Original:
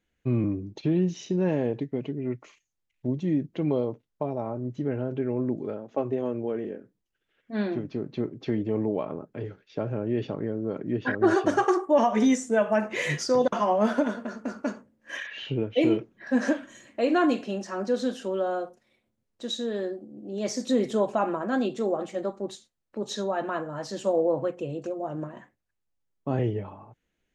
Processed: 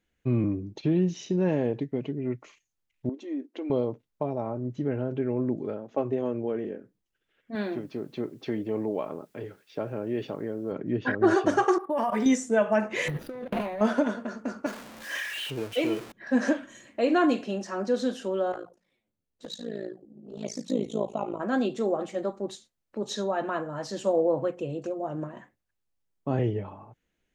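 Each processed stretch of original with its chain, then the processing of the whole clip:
0:03.09–0:03.70: downward compressor 4 to 1, threshold −28 dBFS + linear-phase brick-wall high-pass 230 Hz + multiband upward and downward expander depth 40%
0:07.55–0:10.72: low-shelf EQ 180 Hz −10.5 dB + bit-depth reduction 12 bits, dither triangular
0:11.78–0:12.26: parametric band 1,300 Hz +6 dB 2 octaves + output level in coarse steps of 13 dB + linearly interpolated sample-rate reduction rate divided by 4×
0:13.08–0:13.81: running median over 41 samples + flat-topped bell 6,100 Hz −10.5 dB 1.1 octaves + compressor whose output falls as the input rises −33 dBFS
0:14.66–0:16.12: converter with a step at zero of −34.5 dBFS + low-shelf EQ 390 Hz −11 dB
0:18.52–0:21.40: amplitude modulation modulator 55 Hz, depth 80% + hum removal 91.74 Hz, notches 2 + flanger swept by the level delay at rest 11.8 ms, full sweep at −28 dBFS
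whole clip: no processing

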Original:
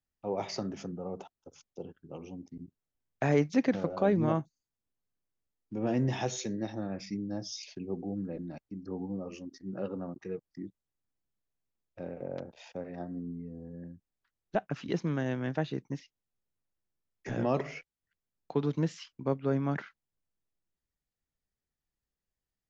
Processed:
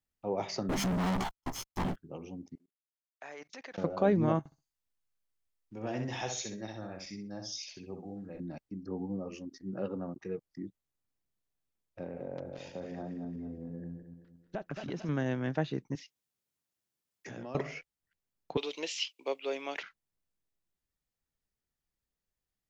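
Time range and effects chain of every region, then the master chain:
0:00.69–0:01.96: lower of the sound and its delayed copy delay 0.96 ms + double-tracking delay 16 ms −4.5 dB + leveller curve on the samples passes 5
0:02.55–0:03.78: high-pass filter 780 Hz + output level in coarse steps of 23 dB
0:04.39–0:08.40: parametric band 230 Hz −9.5 dB 2.8 octaves + repeating echo 64 ms, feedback 21%, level −6 dB
0:12.03–0:15.09: feedback delay that plays each chunk backwards 111 ms, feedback 61%, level −7.5 dB + downward compressor 2.5 to 1, threshold −36 dBFS
0:15.95–0:17.55: high-pass filter 110 Hz + high-shelf EQ 2,300 Hz +7 dB + downward compressor 3 to 1, threshold −44 dBFS
0:18.57–0:19.83: high-pass filter 420 Hz 24 dB per octave + high shelf with overshoot 2,000 Hz +9 dB, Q 3
whole clip: no processing

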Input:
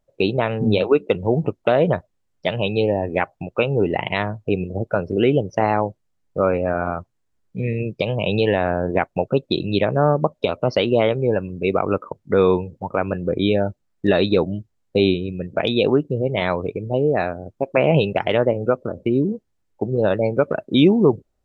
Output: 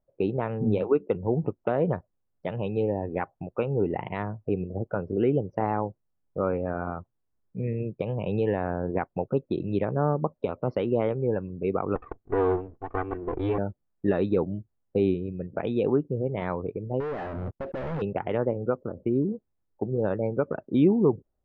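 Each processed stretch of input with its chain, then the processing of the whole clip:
0:11.95–0:13.58: lower of the sound and its delayed copy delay 2.6 ms + low-pass filter 3,900 Hz 24 dB per octave
0:17.00–0:18.02: gain into a clipping stage and back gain 22 dB + downward compressor 2.5 to 1, threshold −30 dBFS + leveller curve on the samples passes 5
whole clip: low-pass filter 1,300 Hz 12 dB per octave; dynamic equaliser 630 Hz, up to −6 dB, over −34 dBFS, Q 4.1; level −6 dB

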